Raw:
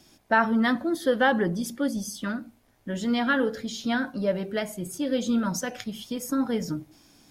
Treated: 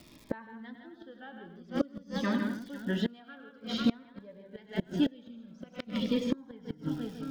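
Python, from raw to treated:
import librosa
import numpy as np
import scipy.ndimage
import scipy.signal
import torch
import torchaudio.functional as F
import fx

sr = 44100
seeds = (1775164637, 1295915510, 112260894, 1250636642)

p1 = scipy.signal.sosfilt(scipy.signal.butter(4, 3900.0, 'lowpass', fs=sr, output='sos'), x)
p2 = p1 + fx.echo_multitap(p1, sr, ms=(99, 500, 893), db=(-9.0, -17.0, -18.5), dry=0)
p3 = fx.spec_repair(p2, sr, seeds[0], start_s=5.09, length_s=0.47, low_hz=590.0, high_hz=1600.0, source='both')
p4 = p3 + 10.0 ** (-6.0 / 20.0) * np.pad(p3, (int(157 * sr / 1000.0), 0))[:len(p3)]
p5 = fx.dmg_crackle(p4, sr, seeds[1], per_s=290.0, level_db=-47.0)
p6 = fx.gate_flip(p5, sr, shuts_db=-19.0, range_db=-28)
p7 = fx.low_shelf(p6, sr, hz=150.0, db=-9.5, at=(2.21, 3.78))
p8 = fx.notch_cascade(p7, sr, direction='falling', hz=0.5)
y = p8 * librosa.db_to_amplitude(4.0)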